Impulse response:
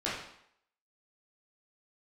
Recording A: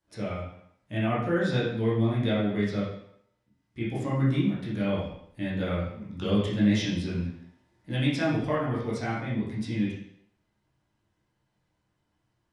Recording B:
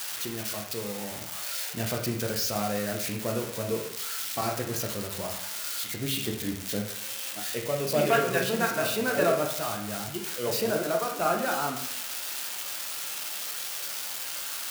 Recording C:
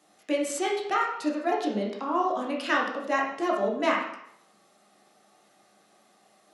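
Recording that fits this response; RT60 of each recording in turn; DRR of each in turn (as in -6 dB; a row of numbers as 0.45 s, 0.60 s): A; 0.70 s, 0.70 s, 0.70 s; -9.0 dB, 1.5 dB, -2.5 dB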